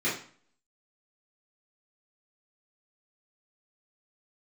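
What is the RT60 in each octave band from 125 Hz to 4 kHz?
0.50 s, 0.50 s, 0.45 s, 0.50 s, 0.45 s, 0.40 s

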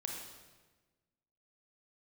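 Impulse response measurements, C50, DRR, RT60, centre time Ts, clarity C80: 1.5 dB, 0.0 dB, 1.3 s, 59 ms, 4.0 dB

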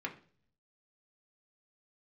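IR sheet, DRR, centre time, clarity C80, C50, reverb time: 0.0 dB, 10 ms, 18.0 dB, 13.5 dB, 0.45 s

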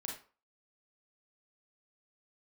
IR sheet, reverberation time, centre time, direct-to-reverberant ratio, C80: 0.40 s, 32 ms, -1.5 dB, 11.0 dB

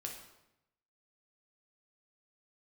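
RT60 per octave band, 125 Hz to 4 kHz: 1.1 s, 0.95 s, 0.90 s, 0.85 s, 0.80 s, 0.70 s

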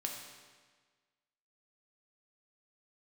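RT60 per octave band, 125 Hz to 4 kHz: 1.5 s, 1.5 s, 1.5 s, 1.5 s, 1.4 s, 1.3 s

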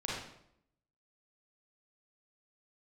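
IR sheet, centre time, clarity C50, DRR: 66 ms, -1.5 dB, -5.5 dB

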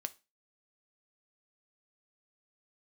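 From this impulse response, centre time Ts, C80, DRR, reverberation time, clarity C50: 2 ms, 28.0 dB, 10.5 dB, 0.30 s, 21.0 dB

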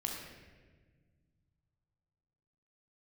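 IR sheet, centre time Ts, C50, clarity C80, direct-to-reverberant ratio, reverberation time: 66 ms, 1.5 dB, 3.5 dB, -1.0 dB, 1.5 s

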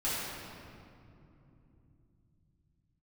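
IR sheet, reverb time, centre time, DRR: 2.9 s, 156 ms, -11.5 dB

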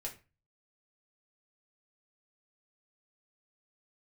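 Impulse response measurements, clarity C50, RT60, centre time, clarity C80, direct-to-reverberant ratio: 12.5 dB, 0.30 s, 14 ms, 18.0 dB, -2.5 dB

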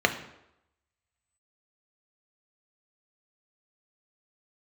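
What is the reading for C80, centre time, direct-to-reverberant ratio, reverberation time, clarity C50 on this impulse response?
14.0 dB, 11 ms, 5.0 dB, 0.85 s, 11.5 dB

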